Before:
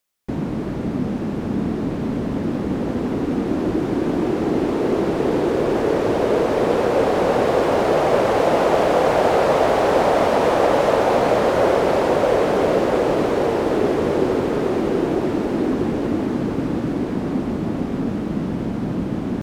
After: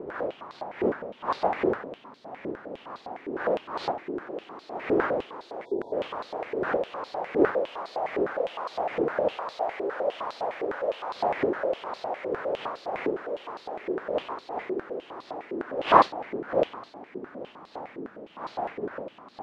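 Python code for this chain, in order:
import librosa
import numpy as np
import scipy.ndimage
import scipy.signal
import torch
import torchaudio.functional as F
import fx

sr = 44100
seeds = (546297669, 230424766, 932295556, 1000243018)

y = fx.dmg_wind(x, sr, seeds[0], corner_hz=560.0, level_db=-14.0)
y = fx.spec_erase(y, sr, start_s=5.65, length_s=0.28, low_hz=1000.0, high_hz=3300.0)
y = fx.filter_held_bandpass(y, sr, hz=9.8, low_hz=390.0, high_hz=4200.0)
y = y * librosa.db_to_amplitude(-5.5)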